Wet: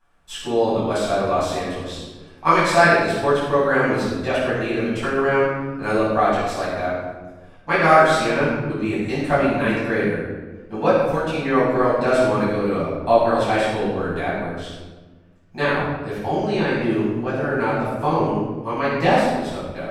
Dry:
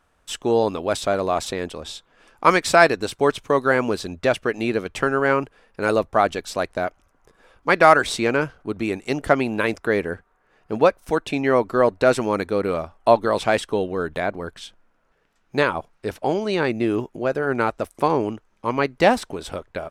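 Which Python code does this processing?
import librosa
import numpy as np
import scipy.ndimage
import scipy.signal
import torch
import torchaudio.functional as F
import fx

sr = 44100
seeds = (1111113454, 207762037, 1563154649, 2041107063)

y = fx.room_shoebox(x, sr, seeds[0], volume_m3=860.0, walls='mixed', distance_m=8.7)
y = F.gain(torch.from_numpy(y), -14.0).numpy()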